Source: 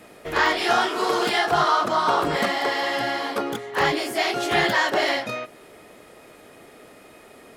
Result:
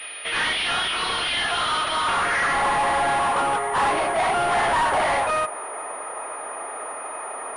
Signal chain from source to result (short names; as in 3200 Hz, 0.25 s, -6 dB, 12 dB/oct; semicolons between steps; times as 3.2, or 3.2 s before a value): band-pass sweep 3200 Hz -> 970 Hz, 1.94–2.72; overdrive pedal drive 32 dB, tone 2600 Hz, clips at -14 dBFS; pulse-width modulation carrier 9600 Hz